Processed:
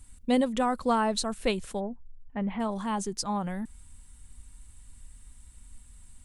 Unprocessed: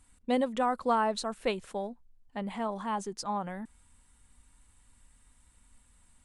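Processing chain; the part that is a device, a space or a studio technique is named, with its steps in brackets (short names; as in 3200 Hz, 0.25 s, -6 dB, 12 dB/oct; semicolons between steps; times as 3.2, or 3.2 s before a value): smiley-face EQ (low shelf 130 Hz +9 dB; bell 890 Hz -5 dB 2.8 oct; high shelf 6000 Hz +5 dB); 1.79–2.59 LPF 1500 Hz -> 2800 Hz 24 dB/oct; gain +5 dB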